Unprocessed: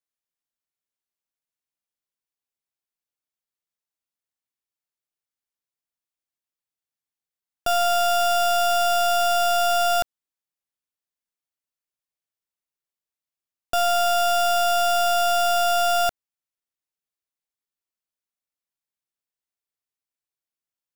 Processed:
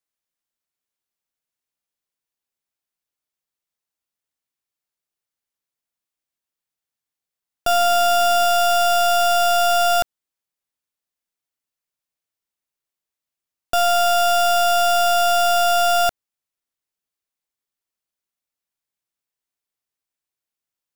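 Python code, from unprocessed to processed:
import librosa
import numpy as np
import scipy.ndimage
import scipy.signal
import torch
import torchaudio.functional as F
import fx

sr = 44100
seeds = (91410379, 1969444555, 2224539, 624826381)

y = fx.peak_eq(x, sr, hz=290.0, db=11.5, octaves=0.56, at=(7.68, 8.45))
y = F.gain(torch.from_numpy(y), 3.5).numpy()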